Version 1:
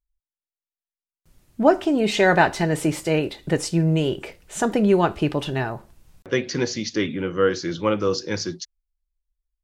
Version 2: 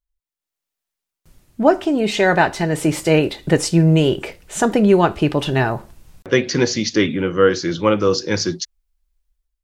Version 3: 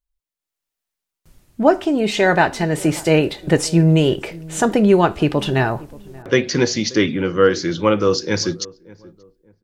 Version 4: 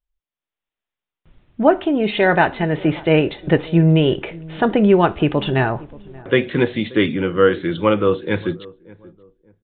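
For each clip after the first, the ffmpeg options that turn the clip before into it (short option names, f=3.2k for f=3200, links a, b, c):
-af "dynaudnorm=f=130:g=7:m=12.5dB,volume=-1dB"
-filter_complex "[0:a]asplit=2[a][b];[b]adelay=581,lowpass=f=970:p=1,volume=-21dB,asplit=2[c][d];[d]adelay=581,lowpass=f=970:p=1,volume=0.32[e];[a][c][e]amix=inputs=3:normalize=0"
-af "aresample=8000,aresample=44100"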